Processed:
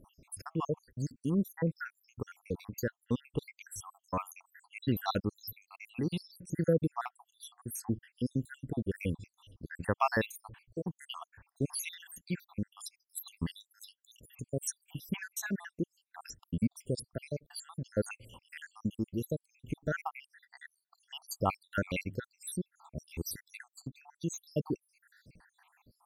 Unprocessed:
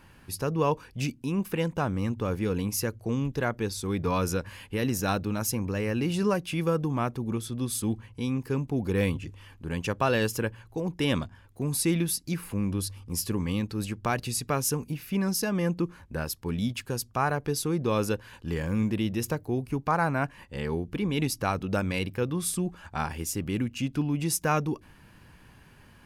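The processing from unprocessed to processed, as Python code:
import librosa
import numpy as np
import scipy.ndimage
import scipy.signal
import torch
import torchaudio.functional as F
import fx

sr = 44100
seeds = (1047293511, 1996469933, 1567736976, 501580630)

y = fx.spec_dropout(x, sr, seeds[0], share_pct=81)
y = y * (1.0 - 0.4 / 2.0 + 0.4 / 2.0 * np.cos(2.0 * np.pi * 0.6 * (np.arange(len(y)) / sr)))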